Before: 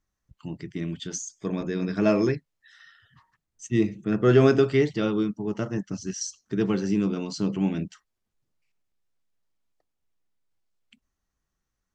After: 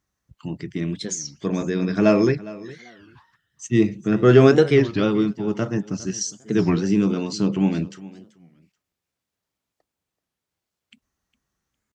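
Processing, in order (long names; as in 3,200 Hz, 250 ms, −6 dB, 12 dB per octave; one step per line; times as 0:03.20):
high-pass filter 62 Hz
on a send: repeating echo 408 ms, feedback 21%, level −19 dB
on the sum: wow of a warped record 33 1/3 rpm, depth 250 cents
level +5 dB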